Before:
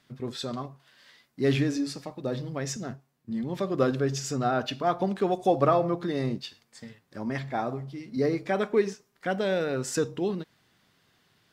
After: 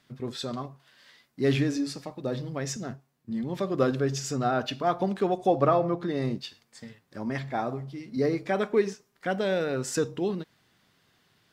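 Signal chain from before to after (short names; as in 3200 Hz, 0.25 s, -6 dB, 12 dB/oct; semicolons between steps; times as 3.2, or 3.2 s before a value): 5.27–6.22 high shelf 4200 Hz -6 dB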